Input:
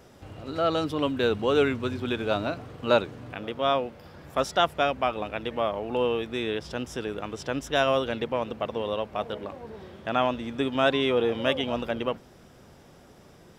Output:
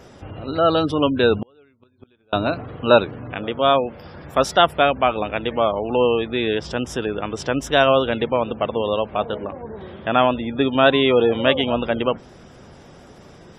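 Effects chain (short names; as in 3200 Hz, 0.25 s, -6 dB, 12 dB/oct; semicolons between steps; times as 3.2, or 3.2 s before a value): spectral gate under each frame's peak -30 dB strong; 1.38–2.33 flipped gate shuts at -22 dBFS, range -39 dB; 9.32–9.81 air absorption 230 m; gain +8 dB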